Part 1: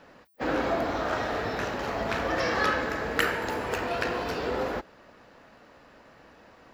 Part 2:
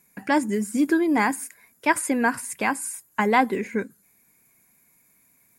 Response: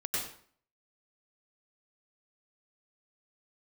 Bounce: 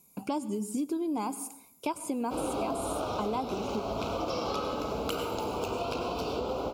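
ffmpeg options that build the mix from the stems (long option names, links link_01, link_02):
-filter_complex "[0:a]adelay=1900,volume=2.5dB,asplit=2[link_01][link_02];[link_02]volume=-7dB[link_03];[1:a]deesser=0.5,volume=0dB,asplit=2[link_04][link_05];[link_05]volume=-21dB[link_06];[2:a]atrim=start_sample=2205[link_07];[link_03][link_06]amix=inputs=2:normalize=0[link_08];[link_08][link_07]afir=irnorm=-1:irlink=0[link_09];[link_01][link_04][link_09]amix=inputs=3:normalize=0,asuperstop=centerf=1800:order=4:qfactor=1.3,acompressor=threshold=-31dB:ratio=4"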